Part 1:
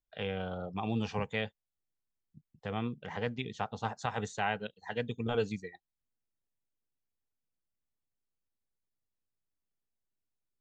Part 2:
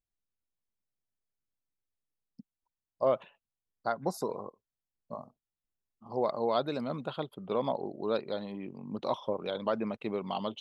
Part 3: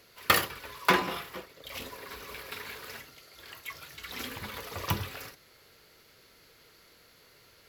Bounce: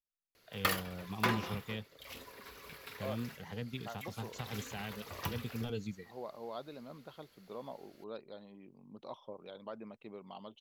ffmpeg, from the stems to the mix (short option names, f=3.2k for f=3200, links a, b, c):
-filter_complex "[0:a]acrossover=split=340|3000[a][b][c];[b]acompressor=threshold=-55dB:ratio=2[d];[a][d][c]amix=inputs=3:normalize=0,adelay=350,volume=-2.5dB[e];[1:a]volume=-14.5dB[f];[2:a]adelay=350,volume=-8.5dB[g];[e][f][g]amix=inputs=3:normalize=0"